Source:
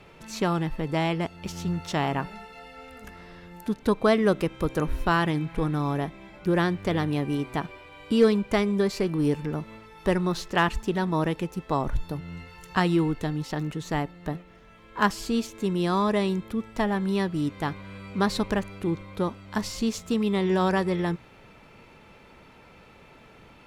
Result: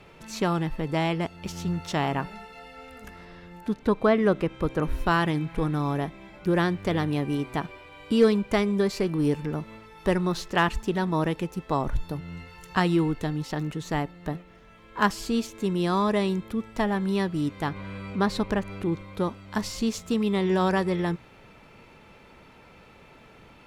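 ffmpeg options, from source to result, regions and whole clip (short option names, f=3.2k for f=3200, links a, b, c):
-filter_complex "[0:a]asettb=1/sr,asplit=3[a][b][c];[a]atrim=end=3.254[d];[b]atrim=start=3.25:end=4.83,asetpts=PTS-STARTPTS,afade=t=in:d=0.004:c=qsin,afade=t=out:st=1.576:d=0.004:c=qsin,acrossover=split=3000[e][f];[f]acompressor=threshold=-46dB:ratio=4:attack=1:release=60[g];[e][g]amix=inputs=2:normalize=0,highshelf=f=8.8k:g=-6.5[h];[c]atrim=start=4.826[i];[d][h]acrossfade=d=0.004:c1=hsin:c2=qsin[j];[j][i]acrossfade=d=0.004:c1=qsin:c2=hsin,asettb=1/sr,asplit=3[k][l][m];[k]atrim=end=17.684[n];[l]atrim=start=17.68:end=18.92,asetpts=PTS-STARTPTS,afade=t=in:d=0.004:c=qsin,afade=t=out:st=1.236:d=0.004:c=qsin,highshelf=f=3.8k:g=-6,acompressor=mode=upward:threshold=-29dB:ratio=2.5:attack=3.2:release=140:knee=2.83:detection=peak[o];[m]atrim=start=18.916[p];[n][o]acrossfade=d=0.004:c1=hsin:c2=qsin[q];[q][p]acrossfade=d=0.004:c1=qsin:c2=hsin"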